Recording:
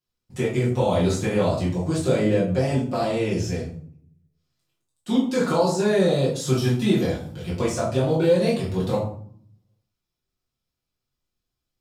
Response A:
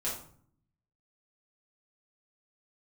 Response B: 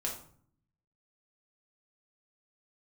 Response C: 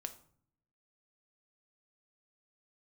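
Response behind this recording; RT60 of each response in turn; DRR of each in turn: A; 0.55, 0.55, 0.55 seconds; −8.0, −2.0, 8.0 decibels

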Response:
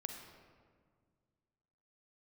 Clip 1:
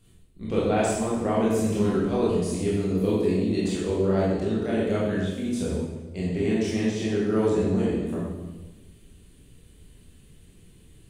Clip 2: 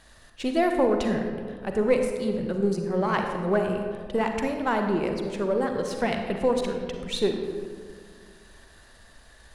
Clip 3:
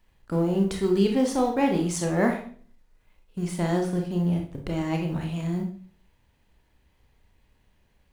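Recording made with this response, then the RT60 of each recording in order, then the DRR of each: 2; 1.2, 1.9, 0.45 seconds; −7.5, 4.0, 2.0 decibels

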